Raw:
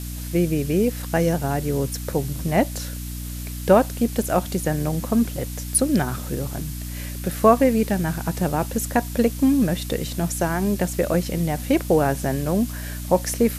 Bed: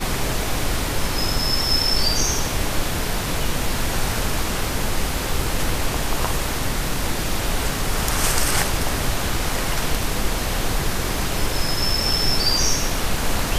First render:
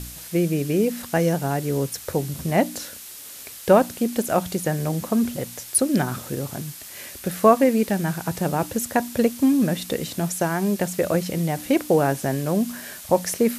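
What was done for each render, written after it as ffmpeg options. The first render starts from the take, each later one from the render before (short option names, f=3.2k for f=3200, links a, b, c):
-af "bandreject=f=60:t=h:w=4,bandreject=f=120:t=h:w=4,bandreject=f=180:t=h:w=4,bandreject=f=240:t=h:w=4,bandreject=f=300:t=h:w=4"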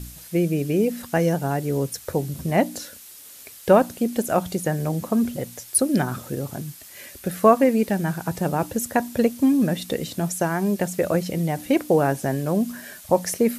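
-af "afftdn=nr=6:nf=-40"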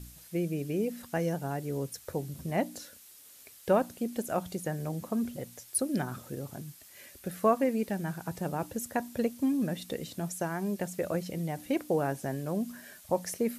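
-af "volume=-10dB"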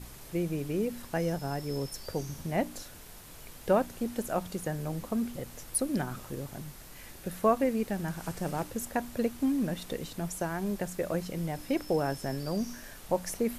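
-filter_complex "[1:a]volume=-27.5dB[a];[0:a][a]amix=inputs=2:normalize=0"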